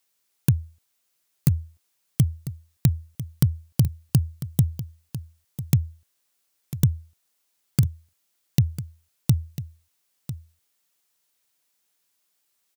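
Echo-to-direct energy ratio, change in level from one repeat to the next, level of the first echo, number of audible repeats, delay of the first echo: -13.5 dB, no regular repeats, -13.5 dB, 1, 998 ms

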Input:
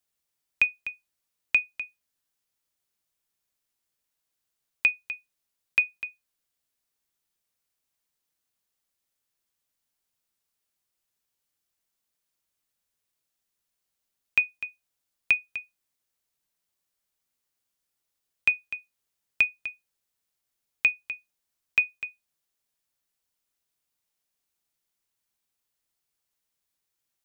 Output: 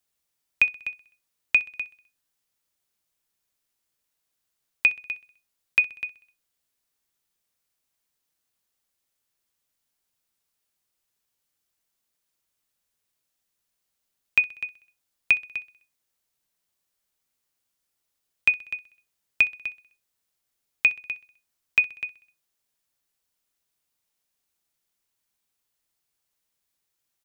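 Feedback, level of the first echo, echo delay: 56%, -20.5 dB, 64 ms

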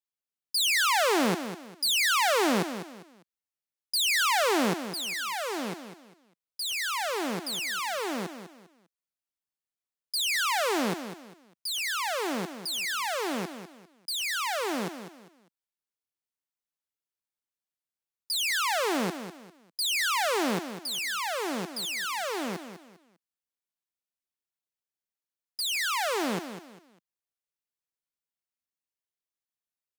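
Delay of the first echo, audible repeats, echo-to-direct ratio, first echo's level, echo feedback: 200 ms, 3, -10.0 dB, -10.5 dB, 30%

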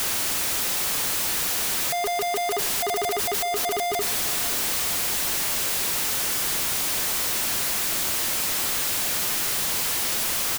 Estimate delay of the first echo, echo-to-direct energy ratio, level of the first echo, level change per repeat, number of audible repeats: 586 ms, -16.5 dB, -18.0 dB, -5.0 dB, 3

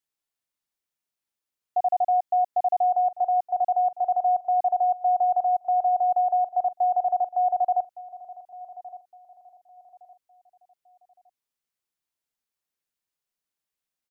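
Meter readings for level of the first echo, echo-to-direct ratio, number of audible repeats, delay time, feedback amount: -18.0 dB, -17.5 dB, 2, 1163 ms, 33%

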